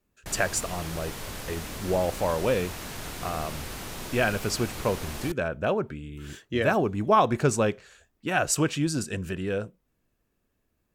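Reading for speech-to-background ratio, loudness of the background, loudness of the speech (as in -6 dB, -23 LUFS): 9.5 dB, -37.0 LUFS, -27.5 LUFS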